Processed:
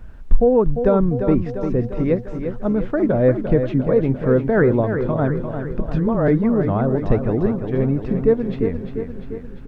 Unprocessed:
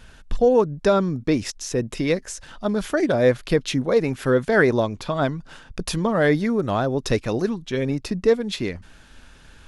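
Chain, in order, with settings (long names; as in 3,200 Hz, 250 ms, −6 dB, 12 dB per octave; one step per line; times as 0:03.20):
low-pass filter 1,800 Hz 12 dB per octave
spectral tilt −2.5 dB per octave
background noise brown −49 dBFS
0:05.80–0:06.28: all-pass dispersion highs, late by 43 ms, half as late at 400 Hz
tape wow and flutter 19 cents
on a send: repeating echo 348 ms, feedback 59%, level −8 dB
on the sum: level −1.5 dB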